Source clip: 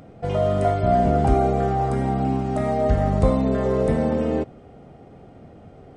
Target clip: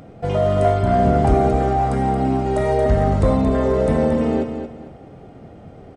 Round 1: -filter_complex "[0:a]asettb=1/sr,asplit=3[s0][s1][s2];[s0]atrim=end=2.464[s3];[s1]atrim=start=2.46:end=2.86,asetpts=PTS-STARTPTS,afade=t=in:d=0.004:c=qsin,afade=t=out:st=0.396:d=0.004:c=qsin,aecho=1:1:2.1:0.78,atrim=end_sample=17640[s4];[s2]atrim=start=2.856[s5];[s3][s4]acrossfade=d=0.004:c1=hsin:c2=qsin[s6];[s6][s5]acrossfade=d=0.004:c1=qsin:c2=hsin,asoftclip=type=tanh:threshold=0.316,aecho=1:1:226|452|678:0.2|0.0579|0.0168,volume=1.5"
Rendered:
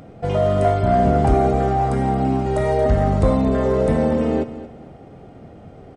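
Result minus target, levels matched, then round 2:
echo-to-direct -6 dB
-filter_complex "[0:a]asettb=1/sr,asplit=3[s0][s1][s2];[s0]atrim=end=2.464[s3];[s1]atrim=start=2.46:end=2.86,asetpts=PTS-STARTPTS,afade=t=in:d=0.004:c=qsin,afade=t=out:st=0.396:d=0.004:c=qsin,aecho=1:1:2.1:0.78,atrim=end_sample=17640[s4];[s2]atrim=start=2.856[s5];[s3][s4]acrossfade=d=0.004:c1=hsin:c2=qsin[s6];[s6][s5]acrossfade=d=0.004:c1=qsin:c2=hsin,asoftclip=type=tanh:threshold=0.316,aecho=1:1:226|452|678:0.398|0.115|0.0335,volume=1.5"

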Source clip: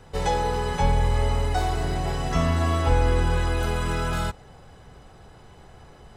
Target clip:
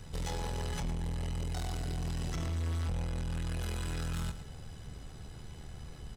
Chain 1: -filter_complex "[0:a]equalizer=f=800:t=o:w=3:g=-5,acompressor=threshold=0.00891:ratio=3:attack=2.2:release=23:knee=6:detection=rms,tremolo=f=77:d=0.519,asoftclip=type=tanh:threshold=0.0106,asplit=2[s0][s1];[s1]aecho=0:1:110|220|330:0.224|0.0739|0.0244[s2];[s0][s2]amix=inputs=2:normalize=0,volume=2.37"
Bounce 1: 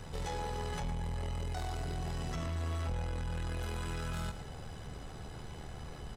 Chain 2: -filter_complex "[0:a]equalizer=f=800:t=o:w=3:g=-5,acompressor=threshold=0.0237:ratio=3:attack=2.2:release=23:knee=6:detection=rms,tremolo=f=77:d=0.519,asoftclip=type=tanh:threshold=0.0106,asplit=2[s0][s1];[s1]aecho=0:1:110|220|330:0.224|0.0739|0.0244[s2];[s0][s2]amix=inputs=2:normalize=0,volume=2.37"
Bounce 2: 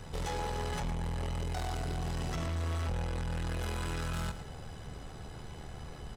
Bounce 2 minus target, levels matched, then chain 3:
1 kHz band +6.0 dB
-filter_complex "[0:a]equalizer=f=800:t=o:w=3:g=-13,acompressor=threshold=0.0237:ratio=3:attack=2.2:release=23:knee=6:detection=rms,tremolo=f=77:d=0.519,asoftclip=type=tanh:threshold=0.0106,asplit=2[s0][s1];[s1]aecho=0:1:110|220|330:0.224|0.0739|0.0244[s2];[s0][s2]amix=inputs=2:normalize=0,volume=2.37"

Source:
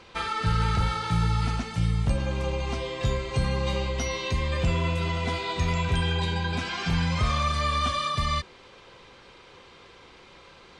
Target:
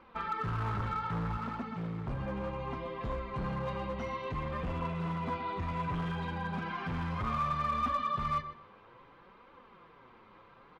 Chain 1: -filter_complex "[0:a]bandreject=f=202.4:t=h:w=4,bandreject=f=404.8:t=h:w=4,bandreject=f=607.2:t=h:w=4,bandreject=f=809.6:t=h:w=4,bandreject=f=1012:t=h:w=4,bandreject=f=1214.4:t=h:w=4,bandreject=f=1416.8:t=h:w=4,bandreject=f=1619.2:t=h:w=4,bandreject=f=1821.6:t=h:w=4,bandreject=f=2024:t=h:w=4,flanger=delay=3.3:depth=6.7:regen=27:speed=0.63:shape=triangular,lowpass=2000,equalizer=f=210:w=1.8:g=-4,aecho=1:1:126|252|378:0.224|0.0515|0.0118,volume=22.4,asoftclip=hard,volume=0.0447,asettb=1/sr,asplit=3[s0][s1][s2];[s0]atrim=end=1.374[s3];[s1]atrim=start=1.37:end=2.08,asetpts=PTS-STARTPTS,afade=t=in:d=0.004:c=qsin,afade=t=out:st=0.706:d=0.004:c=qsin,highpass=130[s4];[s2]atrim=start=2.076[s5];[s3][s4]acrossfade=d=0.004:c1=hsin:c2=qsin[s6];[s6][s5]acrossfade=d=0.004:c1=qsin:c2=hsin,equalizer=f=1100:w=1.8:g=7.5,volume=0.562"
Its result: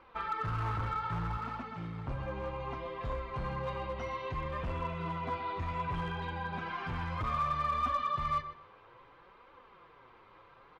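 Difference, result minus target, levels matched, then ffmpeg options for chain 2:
250 Hz band -4.5 dB
-filter_complex "[0:a]bandreject=f=202.4:t=h:w=4,bandreject=f=404.8:t=h:w=4,bandreject=f=607.2:t=h:w=4,bandreject=f=809.6:t=h:w=4,bandreject=f=1012:t=h:w=4,bandreject=f=1214.4:t=h:w=4,bandreject=f=1416.8:t=h:w=4,bandreject=f=1619.2:t=h:w=4,bandreject=f=1821.6:t=h:w=4,bandreject=f=2024:t=h:w=4,flanger=delay=3.3:depth=6.7:regen=27:speed=0.63:shape=triangular,lowpass=2000,equalizer=f=210:w=1.8:g=6,aecho=1:1:126|252|378:0.224|0.0515|0.0118,volume=22.4,asoftclip=hard,volume=0.0447,asettb=1/sr,asplit=3[s0][s1][s2];[s0]atrim=end=1.374[s3];[s1]atrim=start=1.37:end=2.08,asetpts=PTS-STARTPTS,afade=t=in:d=0.004:c=qsin,afade=t=out:st=0.706:d=0.004:c=qsin,highpass=130[s4];[s2]atrim=start=2.076[s5];[s3][s4]acrossfade=d=0.004:c1=hsin:c2=qsin[s6];[s6][s5]acrossfade=d=0.004:c1=qsin:c2=hsin,equalizer=f=1100:w=1.8:g=7.5,volume=0.562"

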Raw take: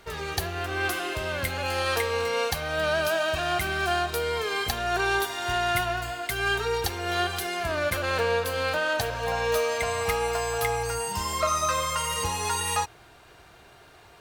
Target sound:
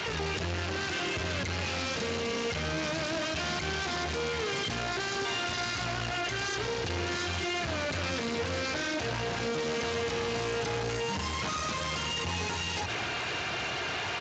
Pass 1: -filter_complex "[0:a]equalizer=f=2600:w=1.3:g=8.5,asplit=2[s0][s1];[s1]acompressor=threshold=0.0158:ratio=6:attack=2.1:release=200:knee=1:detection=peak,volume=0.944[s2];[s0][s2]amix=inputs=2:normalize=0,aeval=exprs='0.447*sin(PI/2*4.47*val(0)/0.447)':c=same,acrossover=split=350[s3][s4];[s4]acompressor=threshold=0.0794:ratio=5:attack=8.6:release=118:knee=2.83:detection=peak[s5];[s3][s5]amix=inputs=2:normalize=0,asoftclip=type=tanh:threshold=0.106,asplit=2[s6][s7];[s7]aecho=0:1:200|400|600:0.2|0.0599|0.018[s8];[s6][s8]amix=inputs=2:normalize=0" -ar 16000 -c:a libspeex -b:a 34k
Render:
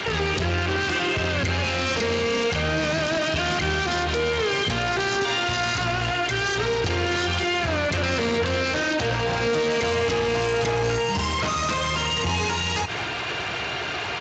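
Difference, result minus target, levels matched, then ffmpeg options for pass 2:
compression: peak gain reduction +7 dB; saturation: distortion -6 dB
-filter_complex "[0:a]equalizer=f=2600:w=1.3:g=8.5,asplit=2[s0][s1];[s1]acompressor=threshold=0.0422:ratio=6:attack=2.1:release=200:knee=1:detection=peak,volume=0.944[s2];[s0][s2]amix=inputs=2:normalize=0,aeval=exprs='0.447*sin(PI/2*4.47*val(0)/0.447)':c=same,acrossover=split=350[s3][s4];[s4]acompressor=threshold=0.0794:ratio=5:attack=8.6:release=118:knee=2.83:detection=peak[s5];[s3][s5]amix=inputs=2:normalize=0,asoftclip=type=tanh:threshold=0.0299,asplit=2[s6][s7];[s7]aecho=0:1:200|400|600:0.2|0.0599|0.018[s8];[s6][s8]amix=inputs=2:normalize=0" -ar 16000 -c:a libspeex -b:a 34k

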